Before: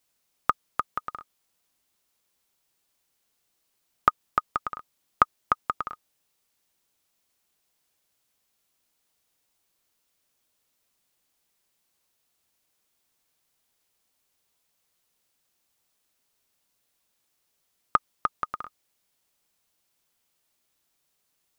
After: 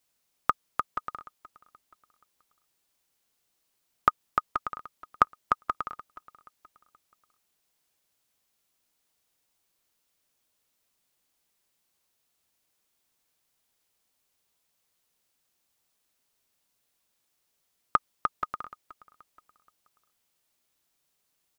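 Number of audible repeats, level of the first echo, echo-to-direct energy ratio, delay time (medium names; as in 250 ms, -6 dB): 2, -20.0 dB, -19.5 dB, 477 ms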